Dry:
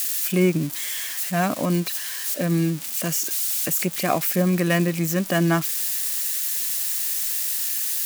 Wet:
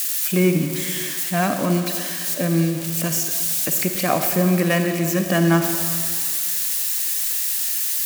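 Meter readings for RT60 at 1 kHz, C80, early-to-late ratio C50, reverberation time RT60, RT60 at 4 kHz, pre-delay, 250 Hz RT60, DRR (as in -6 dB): 2.3 s, 7.0 dB, 6.0 dB, 2.2 s, 2.2 s, 36 ms, 2.0 s, 5.5 dB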